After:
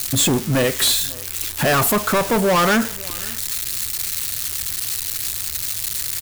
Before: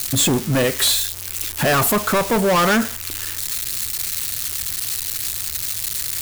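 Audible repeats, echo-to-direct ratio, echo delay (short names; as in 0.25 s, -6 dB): 1, -22.5 dB, 0.539 s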